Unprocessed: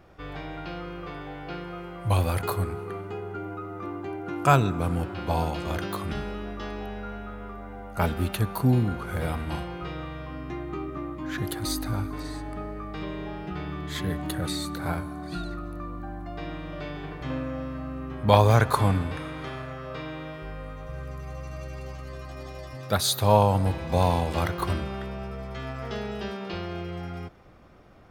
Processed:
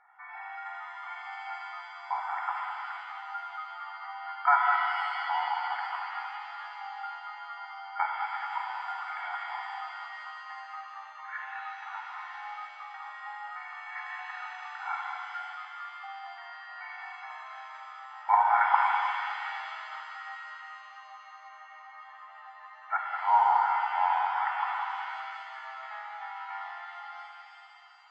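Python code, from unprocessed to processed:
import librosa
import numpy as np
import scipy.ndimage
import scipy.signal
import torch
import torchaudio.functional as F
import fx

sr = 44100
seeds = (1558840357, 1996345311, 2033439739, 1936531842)

y = fx.brickwall_bandpass(x, sr, low_hz=650.0, high_hz=2300.0)
y = fx.air_absorb(y, sr, metres=120.0)
y = y + 0.82 * np.pad(y, (int(2.2 * sr / 1000.0), 0))[:len(y)]
y = y + 10.0 ** (-8.0 / 20.0) * np.pad(y, (int(200 * sr / 1000.0), 0))[:len(y)]
y = fx.rev_shimmer(y, sr, seeds[0], rt60_s=2.6, semitones=7, shimmer_db=-8, drr_db=1.5)
y = F.gain(torch.from_numpy(y), -2.5).numpy()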